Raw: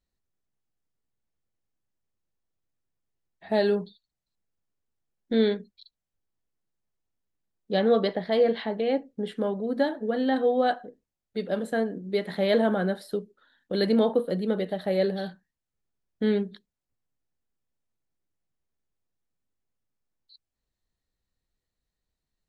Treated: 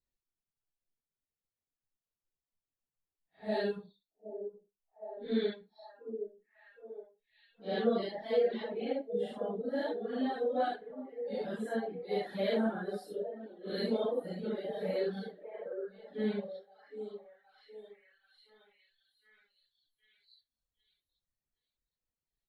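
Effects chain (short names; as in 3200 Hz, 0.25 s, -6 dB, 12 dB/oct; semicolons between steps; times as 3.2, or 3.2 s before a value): phase scrambler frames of 0.2 s; delay with a stepping band-pass 0.767 s, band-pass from 390 Hz, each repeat 0.7 oct, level -6 dB; reverb removal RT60 1.2 s; gain -7.5 dB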